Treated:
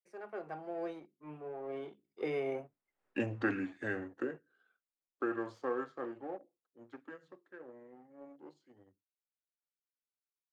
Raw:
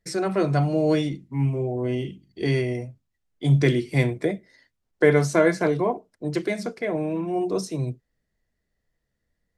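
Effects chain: Doppler pass-by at 2.79 s, 57 m/s, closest 3.6 m; waveshaping leveller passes 1; compression 2:1, threshold -40 dBFS, peak gain reduction 9.5 dB; three-band isolator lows -22 dB, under 350 Hz, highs -18 dB, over 2.4 kHz; tape speed -9%; trim +13 dB

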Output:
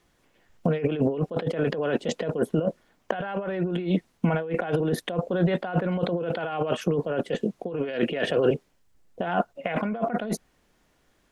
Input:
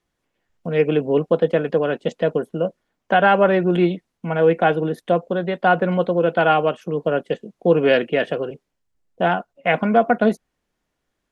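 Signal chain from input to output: compressor with a negative ratio -28 dBFS, ratio -1; trim +1.5 dB

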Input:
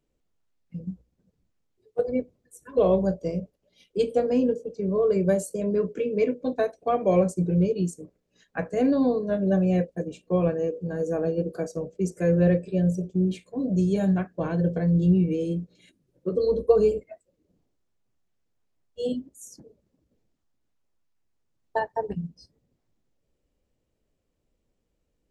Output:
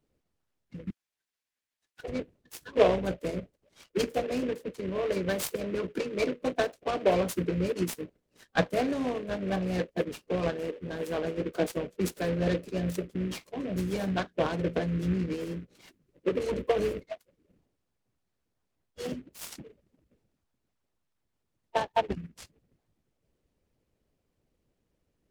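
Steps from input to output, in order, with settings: 0.90–2.04 s: steep high-pass 1.5 kHz 96 dB/octave; harmonic-percussive split harmonic -15 dB; delay time shaken by noise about 1.8 kHz, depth 0.048 ms; trim +5.5 dB

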